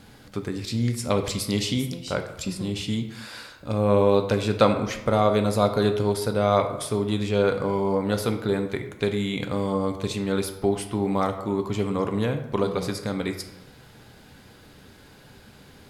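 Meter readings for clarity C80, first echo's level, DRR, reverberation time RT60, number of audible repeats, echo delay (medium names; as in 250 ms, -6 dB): 11.5 dB, no echo, 5.5 dB, 0.95 s, no echo, no echo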